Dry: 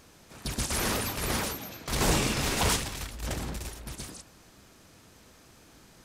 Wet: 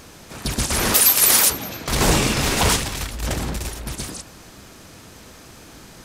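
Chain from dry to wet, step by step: in parallel at -1.5 dB: compression, threshold -41 dBFS, peak gain reduction 19 dB; 0.94–1.50 s: on the sum: RIAA curve recording; trim +7 dB

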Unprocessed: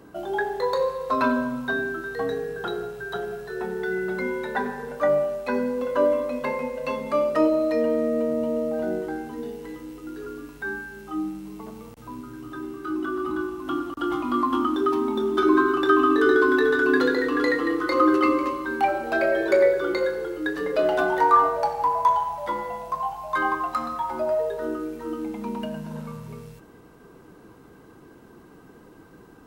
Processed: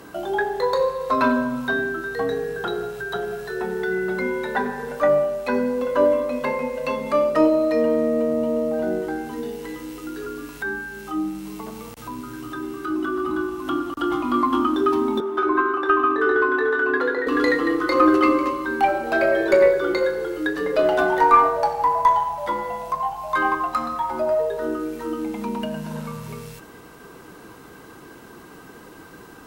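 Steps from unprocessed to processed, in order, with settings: 15.20–17.27 s: three-band isolator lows -17 dB, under 400 Hz, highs -15 dB, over 2.2 kHz; Chebyshev shaper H 2 -18 dB, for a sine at -5.5 dBFS; tape noise reduction on one side only encoder only; trim +3 dB

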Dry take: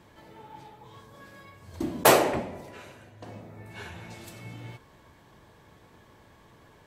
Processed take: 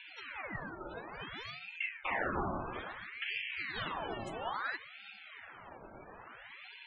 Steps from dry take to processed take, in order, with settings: reverse; compression 12:1, threshold -37 dBFS, peak gain reduction 24.5 dB; reverse; wow and flutter 110 cents; loudest bins only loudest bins 32; ring modulator with a swept carrier 1.5 kHz, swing 70%, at 0.59 Hz; trim +8 dB

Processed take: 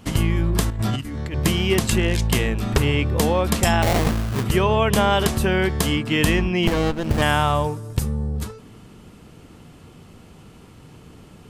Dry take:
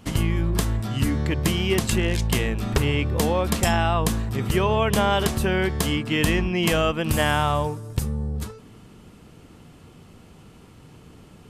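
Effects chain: 0.70–1.34 s: compressor with a negative ratio -27 dBFS, ratio -0.5; 3.82–4.44 s: sample-rate reducer 1.4 kHz, jitter 20%; 6.67–7.22 s: sliding maximum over 33 samples; trim +2.5 dB

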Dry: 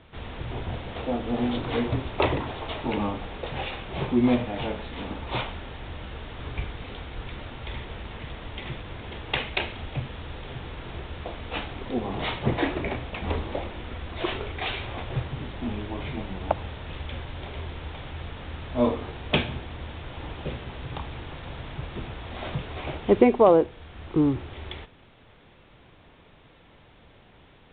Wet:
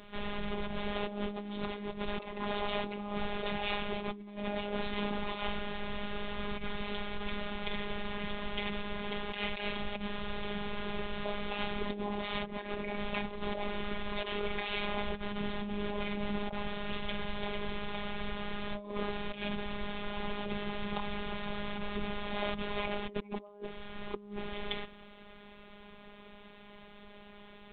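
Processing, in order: compressor with a negative ratio -34 dBFS, ratio -1; robot voice 205 Hz

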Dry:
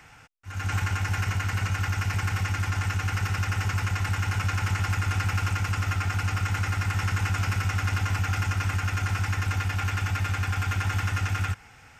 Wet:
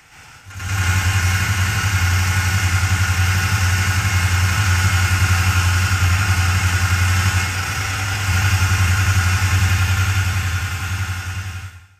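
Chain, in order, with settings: fade out at the end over 2.47 s; treble shelf 2.5 kHz +8.5 dB; 7.28–8.15 s: compressor with a negative ratio -29 dBFS, ratio -0.5; plate-style reverb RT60 0.79 s, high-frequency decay 0.95×, pre-delay 105 ms, DRR -7 dB

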